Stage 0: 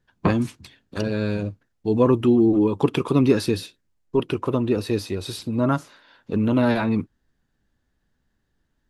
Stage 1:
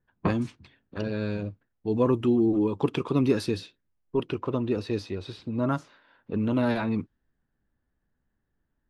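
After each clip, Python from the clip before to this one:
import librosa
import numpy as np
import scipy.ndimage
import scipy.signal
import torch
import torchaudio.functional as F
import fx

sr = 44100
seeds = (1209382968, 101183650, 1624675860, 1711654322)

y = fx.env_lowpass(x, sr, base_hz=2000.0, full_db=-13.5)
y = y * librosa.db_to_amplitude(-5.5)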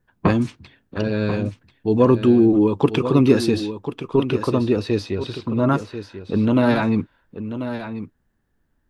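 y = x + 10.0 ** (-10.5 / 20.0) * np.pad(x, (int(1039 * sr / 1000.0), 0))[:len(x)]
y = y * librosa.db_to_amplitude(8.0)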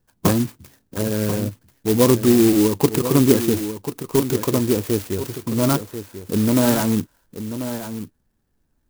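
y = fx.clock_jitter(x, sr, seeds[0], jitter_ms=0.11)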